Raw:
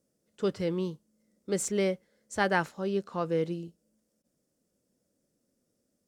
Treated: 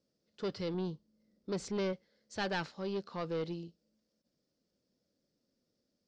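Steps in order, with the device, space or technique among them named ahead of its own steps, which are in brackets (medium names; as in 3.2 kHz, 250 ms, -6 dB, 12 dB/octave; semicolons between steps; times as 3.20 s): 0.74–1.93 s: tilt EQ -1.5 dB/octave; overdriven synthesiser ladder filter (saturation -25.5 dBFS, distortion -11 dB; four-pole ladder low-pass 5.3 kHz, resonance 55%); trim +5.5 dB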